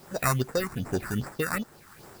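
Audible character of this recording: aliases and images of a low sample rate 3200 Hz, jitter 0%; phasing stages 4, 2.5 Hz, lowest notch 490–4200 Hz; a quantiser's noise floor 10-bit, dither triangular; tremolo triangle 1.1 Hz, depth 60%

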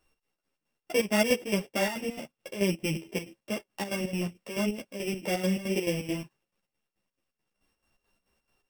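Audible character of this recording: a buzz of ramps at a fixed pitch in blocks of 16 samples; chopped level 4.6 Hz, depth 65%, duty 60%; a shimmering, thickened sound

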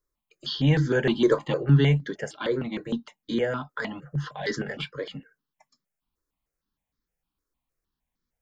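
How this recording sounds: notches that jump at a steady rate 6.5 Hz 760–2700 Hz

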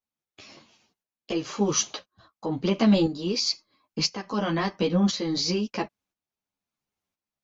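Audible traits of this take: tremolo saw up 0.98 Hz, depth 65%; a shimmering, thickened sound

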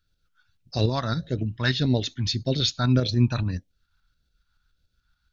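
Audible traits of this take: phasing stages 2, 1.7 Hz, lowest notch 440–1100 Hz; tremolo saw up 7 Hz, depth 45%

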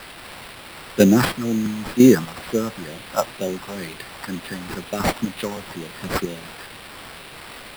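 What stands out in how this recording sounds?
chopped level 1 Hz, depth 65%, duty 25%; a quantiser's noise floor 8-bit, dither triangular; phasing stages 4, 2.1 Hz, lowest notch 350–1300 Hz; aliases and images of a low sample rate 6500 Hz, jitter 0%

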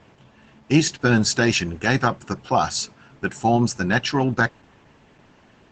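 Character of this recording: Opus

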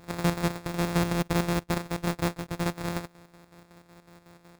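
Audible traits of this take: a buzz of ramps at a fixed pitch in blocks of 256 samples; chopped level 5.4 Hz, depth 60%, duty 60%; aliases and images of a low sample rate 3000 Hz, jitter 0%

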